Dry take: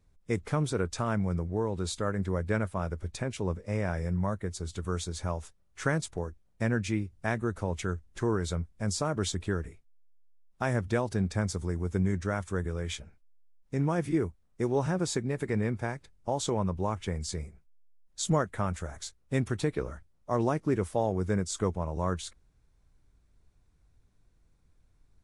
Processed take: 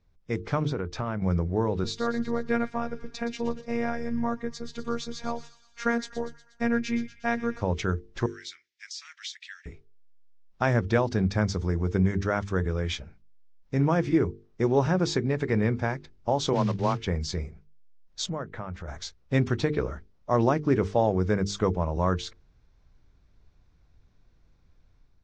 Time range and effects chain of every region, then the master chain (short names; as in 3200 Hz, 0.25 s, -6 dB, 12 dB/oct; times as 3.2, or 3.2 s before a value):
0.65–1.22 high shelf 4500 Hz -11.5 dB + compressor, threshold -30 dBFS
1.84–7.61 notch 3300 Hz, Q 24 + robotiser 234 Hz + thin delay 0.12 s, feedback 60%, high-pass 2300 Hz, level -11.5 dB
8.26–9.66 elliptic high-pass 1900 Hz, stop band 80 dB + compressor 4:1, threshold -37 dBFS
16.53–17.05 block floating point 5-bit + frequency shift +20 Hz + three-band expander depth 70%
18.26–18.88 LPF 2100 Hz 6 dB/oct + compressor 2:1, threshold -42 dBFS
whole clip: steep low-pass 6000 Hz 36 dB/oct; notches 50/100/150/200/250/300/350/400/450 Hz; AGC gain up to 5.5 dB